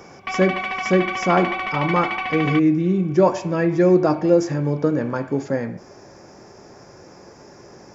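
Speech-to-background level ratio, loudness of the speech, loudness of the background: 5.5 dB, -20.0 LUFS, -25.5 LUFS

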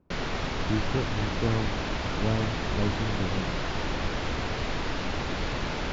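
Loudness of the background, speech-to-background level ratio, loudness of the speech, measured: -31.5 LUFS, -1.0 dB, -32.5 LUFS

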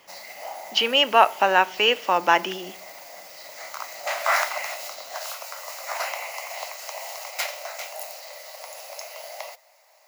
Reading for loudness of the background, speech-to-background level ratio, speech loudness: -32.5 LUFS, 12.5 dB, -20.0 LUFS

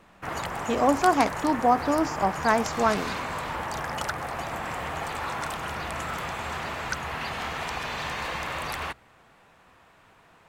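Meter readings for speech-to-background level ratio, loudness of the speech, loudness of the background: 7.5 dB, -24.5 LUFS, -32.0 LUFS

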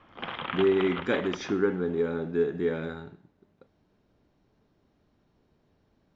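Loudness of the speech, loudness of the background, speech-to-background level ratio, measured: -28.0 LUFS, -37.0 LUFS, 9.0 dB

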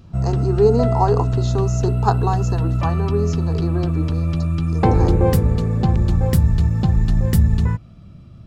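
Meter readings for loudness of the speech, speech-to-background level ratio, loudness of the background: -23.5 LUFS, -4.5 dB, -19.0 LUFS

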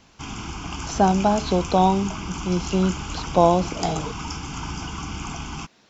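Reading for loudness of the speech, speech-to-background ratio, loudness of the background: -22.0 LUFS, 10.0 dB, -32.0 LUFS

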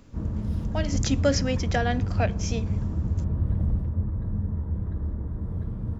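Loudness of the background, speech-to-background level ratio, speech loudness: -29.0 LUFS, 0.0 dB, -29.0 LUFS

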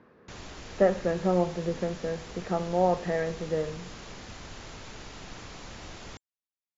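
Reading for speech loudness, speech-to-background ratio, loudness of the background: -29.0 LUFS, 15.0 dB, -44.0 LUFS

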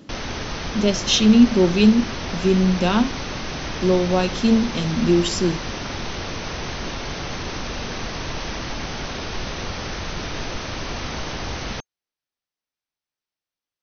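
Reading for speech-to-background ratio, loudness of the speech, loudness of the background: 10.5 dB, -18.5 LUFS, -29.0 LUFS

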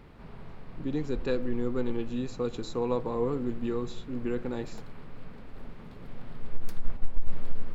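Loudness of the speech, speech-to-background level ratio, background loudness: -33.0 LUFS, 14.0 dB, -47.0 LUFS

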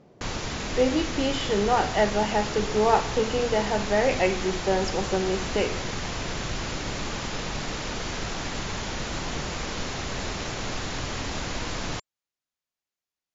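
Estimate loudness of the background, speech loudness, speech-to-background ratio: -31.5 LUFS, -25.5 LUFS, 6.0 dB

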